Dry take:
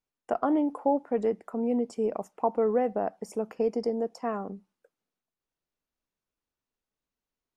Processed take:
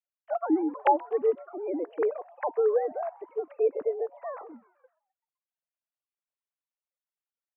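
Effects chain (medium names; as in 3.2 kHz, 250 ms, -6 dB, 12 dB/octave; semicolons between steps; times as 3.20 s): formants replaced by sine waves; frequency-shifting echo 128 ms, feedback 55%, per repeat +130 Hz, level -23.5 dB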